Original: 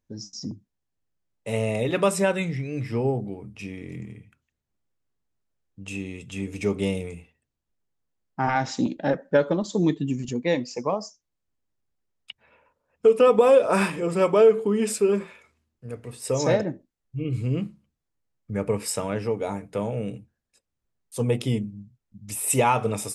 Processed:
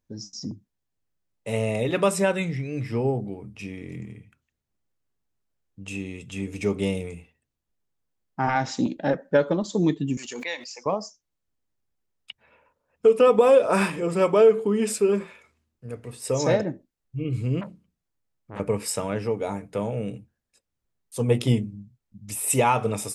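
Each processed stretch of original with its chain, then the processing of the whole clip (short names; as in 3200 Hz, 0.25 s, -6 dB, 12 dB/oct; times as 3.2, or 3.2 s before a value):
10.17–10.86 HPF 1100 Hz + backwards sustainer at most 36 dB/s
17.61–18.6 notches 60/120/180/240/300/360/420/480/540 Hz + core saturation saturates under 1900 Hz
21.28–21.76 doubler 17 ms -11 dB + transient shaper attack +7 dB, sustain +2 dB
whole clip: dry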